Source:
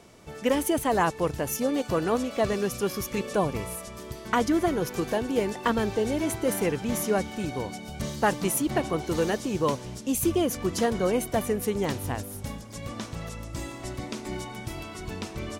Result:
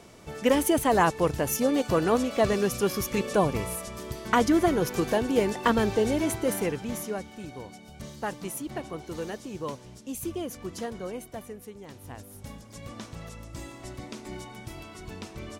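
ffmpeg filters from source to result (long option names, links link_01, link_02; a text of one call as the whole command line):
ffmpeg -i in.wav -af "volume=15dB,afade=type=out:start_time=6.03:duration=1.17:silence=0.281838,afade=type=out:start_time=10.72:duration=1.13:silence=0.354813,afade=type=in:start_time=11.85:duration=0.81:silence=0.223872" out.wav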